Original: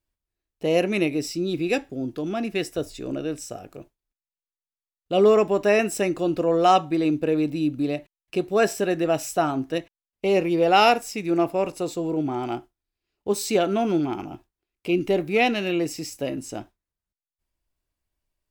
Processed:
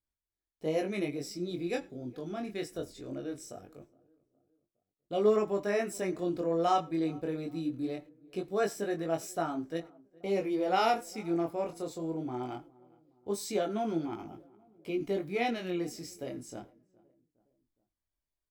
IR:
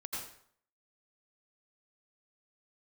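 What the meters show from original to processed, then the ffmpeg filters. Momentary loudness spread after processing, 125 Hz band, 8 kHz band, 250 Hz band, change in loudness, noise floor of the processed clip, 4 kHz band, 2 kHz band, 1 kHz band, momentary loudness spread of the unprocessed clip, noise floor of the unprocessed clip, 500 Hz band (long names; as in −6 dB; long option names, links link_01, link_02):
14 LU, −9.5 dB, −10.5 dB, −10.0 dB, −10.0 dB, below −85 dBFS, −12.5 dB, −12.5 dB, −10.0 dB, 13 LU, below −85 dBFS, −10.0 dB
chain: -filter_complex "[0:a]flanger=delay=18:depth=6.7:speed=0.21,bandreject=frequency=2700:width=5.8,asplit=2[link_01][link_02];[link_02]adelay=414,lowpass=frequency=1300:poles=1,volume=-24dB,asplit=2[link_03][link_04];[link_04]adelay=414,lowpass=frequency=1300:poles=1,volume=0.51,asplit=2[link_05][link_06];[link_06]adelay=414,lowpass=frequency=1300:poles=1,volume=0.51[link_07];[link_01][link_03][link_05][link_07]amix=inputs=4:normalize=0,asplit=2[link_08][link_09];[1:a]atrim=start_sample=2205,afade=type=out:start_time=0.15:duration=0.01,atrim=end_sample=7056[link_10];[link_09][link_10]afir=irnorm=-1:irlink=0,volume=-20dB[link_11];[link_08][link_11]amix=inputs=2:normalize=0,volume=-7.5dB"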